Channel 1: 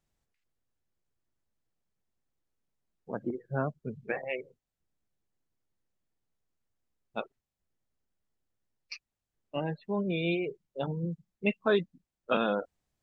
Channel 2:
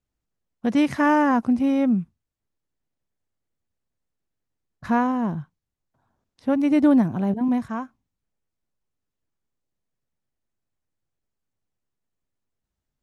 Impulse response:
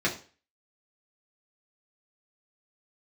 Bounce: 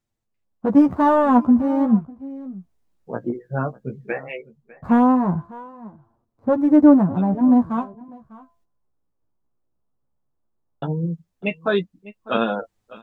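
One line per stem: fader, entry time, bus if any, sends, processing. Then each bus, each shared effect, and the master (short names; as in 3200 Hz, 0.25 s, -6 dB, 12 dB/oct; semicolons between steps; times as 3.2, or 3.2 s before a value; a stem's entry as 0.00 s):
+2.5 dB, 0.00 s, muted 8.64–10.82, no send, echo send -20.5 dB, auto duck -13 dB, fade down 0.75 s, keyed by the second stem
+1.0 dB, 0.00 s, no send, echo send -20 dB, median filter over 25 samples; resonant high shelf 1800 Hz -14 dB, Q 1.5; de-hum 339.9 Hz, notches 3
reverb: off
echo: echo 0.6 s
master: AGC gain up to 8 dB; flange 0.16 Hz, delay 8.4 ms, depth 8.9 ms, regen +15%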